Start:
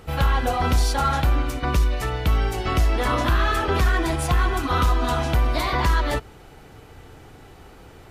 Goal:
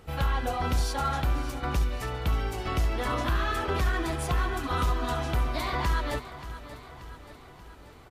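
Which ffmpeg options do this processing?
-af "aecho=1:1:582|1164|1746|2328|2910|3492:0.2|0.114|0.0648|0.037|0.0211|0.012,volume=-7dB"

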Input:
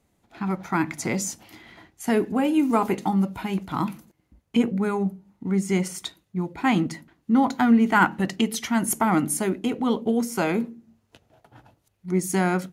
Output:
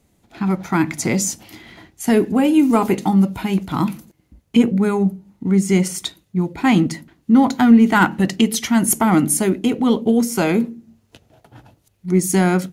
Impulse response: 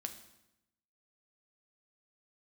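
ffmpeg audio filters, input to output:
-filter_complex "[0:a]asplit=2[a][b];[b]acontrast=74,volume=-2.5dB[c];[a][c]amix=inputs=2:normalize=0,equalizer=f=1.1k:w=0.58:g=-5"

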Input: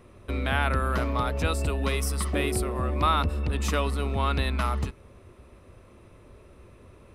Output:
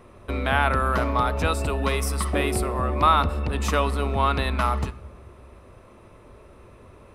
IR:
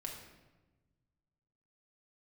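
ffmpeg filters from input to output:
-filter_complex "[0:a]equalizer=f=910:t=o:w=1.7:g=5.5,asplit=2[a][b];[1:a]atrim=start_sample=2205[c];[b][c]afir=irnorm=-1:irlink=0,volume=-10.5dB[d];[a][d]amix=inputs=2:normalize=0"

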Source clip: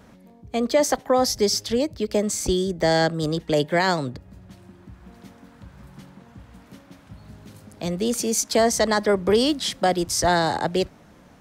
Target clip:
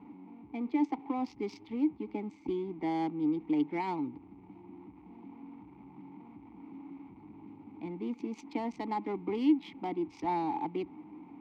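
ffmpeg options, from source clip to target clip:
-filter_complex "[0:a]aeval=exprs='val(0)+0.5*0.0211*sgn(val(0))':c=same,adynamicsmooth=sensitivity=2:basefreq=1.1k,asplit=3[a][b][c];[a]bandpass=f=300:t=q:w=8,volume=0dB[d];[b]bandpass=f=870:t=q:w=8,volume=-6dB[e];[c]bandpass=f=2.24k:t=q:w=8,volume=-9dB[f];[d][e][f]amix=inputs=3:normalize=0"

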